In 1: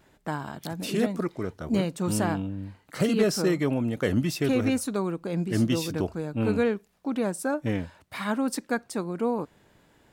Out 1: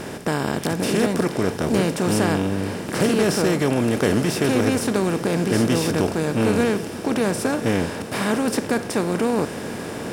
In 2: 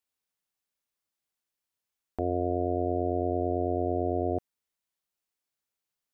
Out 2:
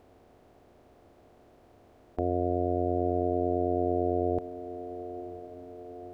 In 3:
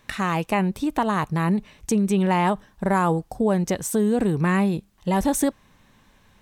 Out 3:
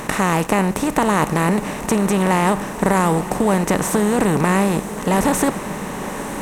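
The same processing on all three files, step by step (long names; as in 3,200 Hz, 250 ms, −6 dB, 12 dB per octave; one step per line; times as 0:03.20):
compressor on every frequency bin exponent 0.4
feedback delay with all-pass diffusion 971 ms, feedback 56%, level −13 dB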